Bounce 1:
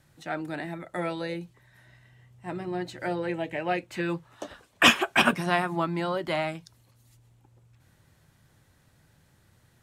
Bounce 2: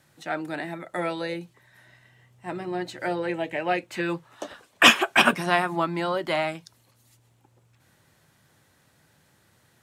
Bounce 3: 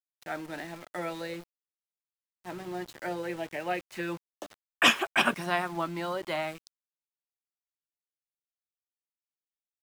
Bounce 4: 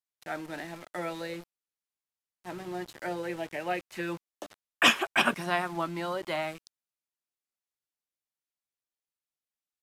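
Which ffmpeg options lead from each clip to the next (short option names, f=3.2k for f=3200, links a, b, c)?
-af "highpass=f=240:p=1,volume=3.5dB"
-af "aeval=exprs='val(0)*gte(abs(val(0)),0.0141)':c=same,volume=-6.5dB"
-af "aresample=32000,aresample=44100"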